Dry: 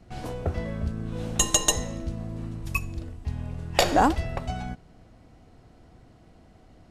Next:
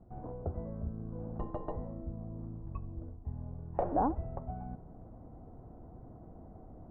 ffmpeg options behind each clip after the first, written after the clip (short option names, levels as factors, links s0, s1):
-af "areverse,acompressor=mode=upward:threshold=0.0355:ratio=2.5,areverse,lowpass=f=1000:w=0.5412,lowpass=f=1000:w=1.3066,volume=0.355"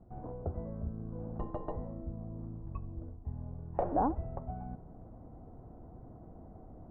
-af anull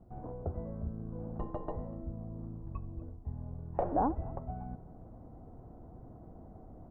-af "aecho=1:1:243:0.0794"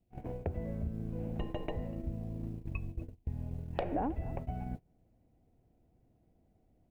-af "agate=range=0.0447:threshold=0.00891:ratio=16:detection=peak,highshelf=f=1700:t=q:w=3:g=13,acompressor=threshold=0.00562:ratio=2.5,volume=2.82"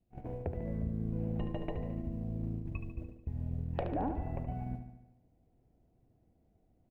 -filter_complex "[0:a]highshelf=f=3400:g=-7.5,asplit=2[s0][s1];[s1]aecho=0:1:73|146|219|292|365|438|511:0.376|0.222|0.131|0.0772|0.0455|0.0269|0.0159[s2];[s0][s2]amix=inputs=2:normalize=0,volume=0.841"